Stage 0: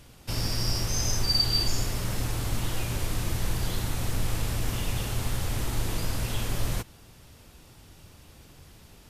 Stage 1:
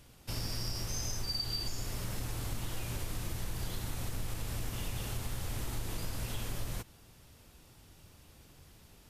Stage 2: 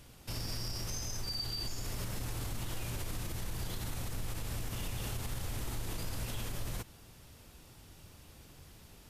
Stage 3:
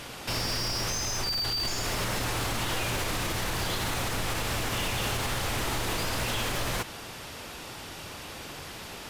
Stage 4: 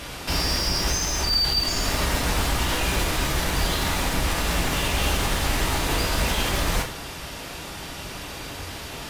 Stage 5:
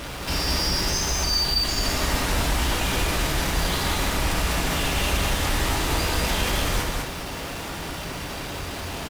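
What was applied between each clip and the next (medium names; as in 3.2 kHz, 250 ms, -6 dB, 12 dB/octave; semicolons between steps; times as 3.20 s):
treble shelf 10 kHz +3.5 dB; compression, threshold -25 dBFS, peak gain reduction 7 dB; trim -6.5 dB
peak limiter -31.5 dBFS, peak gain reduction 7 dB; trim +2.5 dB
overdrive pedal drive 20 dB, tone 3.1 kHz, clips at -28.5 dBFS; trim +8.5 dB
octave divider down 1 oct, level +2 dB; reverberation, pre-delay 3 ms, DRR 1.5 dB; trim +3 dB
in parallel at -12 dB: Schmitt trigger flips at -37 dBFS; on the sum: delay 198 ms -3.5 dB; trim -3 dB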